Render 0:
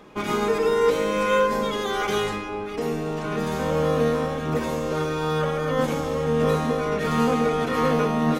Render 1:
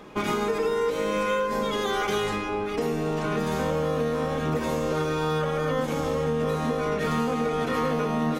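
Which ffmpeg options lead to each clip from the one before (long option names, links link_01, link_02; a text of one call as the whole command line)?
ffmpeg -i in.wav -af "acompressor=threshold=-25dB:ratio=6,volume=2.5dB" out.wav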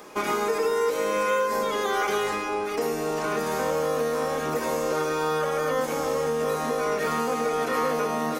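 ffmpeg -i in.wav -filter_complex "[0:a]acrossover=split=3300[link_01][link_02];[link_02]acompressor=threshold=-48dB:ratio=4:attack=1:release=60[link_03];[link_01][link_03]amix=inputs=2:normalize=0,aexciter=amount=3.4:drive=7.5:freq=4700,bass=frequency=250:gain=-14,treble=frequency=4000:gain=-5,volume=2.5dB" out.wav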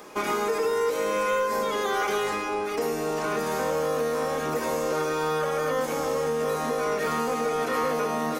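ffmpeg -i in.wav -af "asoftclip=type=tanh:threshold=-15.5dB" out.wav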